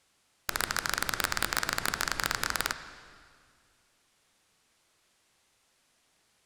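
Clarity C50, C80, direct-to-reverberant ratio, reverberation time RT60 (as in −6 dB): 10.5 dB, 11.5 dB, 10.0 dB, 2.0 s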